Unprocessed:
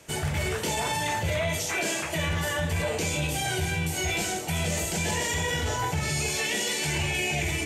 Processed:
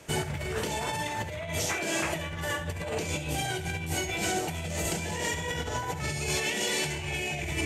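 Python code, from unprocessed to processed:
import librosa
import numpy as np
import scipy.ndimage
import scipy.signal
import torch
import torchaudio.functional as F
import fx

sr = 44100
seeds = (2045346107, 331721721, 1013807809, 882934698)

y = fx.high_shelf(x, sr, hz=3000.0, db=-4.5)
y = fx.over_compress(y, sr, threshold_db=-31.0, ratio=-0.5)
y = y + 10.0 ** (-11.5 / 20.0) * np.pad(y, (int(70 * sr / 1000.0), 0))[:len(y)]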